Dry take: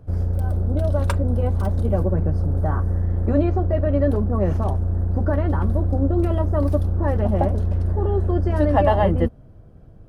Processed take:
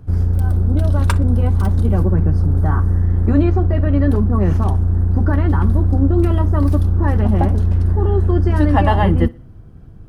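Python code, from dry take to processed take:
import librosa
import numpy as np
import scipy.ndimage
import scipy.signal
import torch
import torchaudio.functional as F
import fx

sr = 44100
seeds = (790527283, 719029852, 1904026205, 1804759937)

p1 = fx.peak_eq(x, sr, hz=580.0, db=-11.5, octaves=0.65)
p2 = p1 + fx.echo_feedback(p1, sr, ms=61, feedback_pct=37, wet_db=-22.5, dry=0)
y = p2 * 10.0 ** (6.5 / 20.0)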